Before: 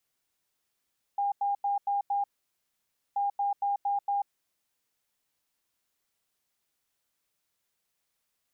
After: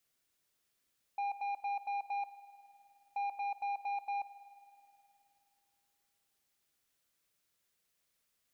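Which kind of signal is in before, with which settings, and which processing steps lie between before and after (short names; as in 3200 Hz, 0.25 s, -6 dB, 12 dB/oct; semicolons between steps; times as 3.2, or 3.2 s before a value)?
beep pattern sine 806 Hz, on 0.14 s, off 0.09 s, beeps 5, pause 0.92 s, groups 2, -25 dBFS
soft clip -28.5 dBFS; bell 880 Hz -4.5 dB 0.63 oct; spring tank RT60 2.7 s, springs 52 ms, chirp 30 ms, DRR 13.5 dB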